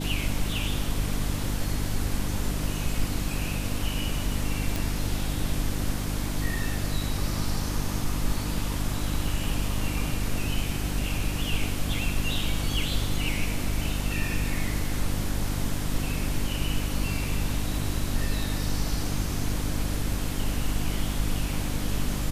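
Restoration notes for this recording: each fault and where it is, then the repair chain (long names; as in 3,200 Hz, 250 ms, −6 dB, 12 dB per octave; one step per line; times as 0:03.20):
mains hum 50 Hz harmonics 6 −31 dBFS
0:04.76: click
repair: click removal
hum removal 50 Hz, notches 6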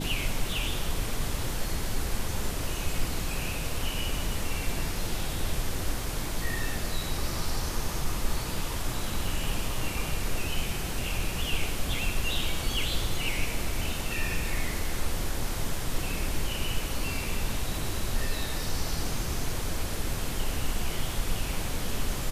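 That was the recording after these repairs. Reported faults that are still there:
none of them is left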